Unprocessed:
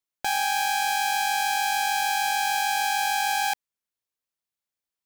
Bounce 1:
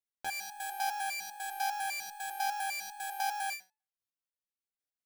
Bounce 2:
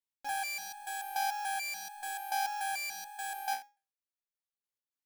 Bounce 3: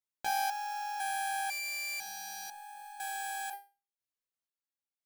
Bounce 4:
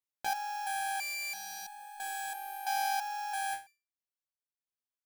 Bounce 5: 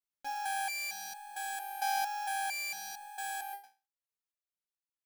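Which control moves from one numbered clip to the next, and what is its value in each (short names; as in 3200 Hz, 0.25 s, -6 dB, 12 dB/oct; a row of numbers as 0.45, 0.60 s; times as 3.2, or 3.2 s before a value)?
stepped resonator, rate: 10, 6.9, 2, 3, 4.4 Hz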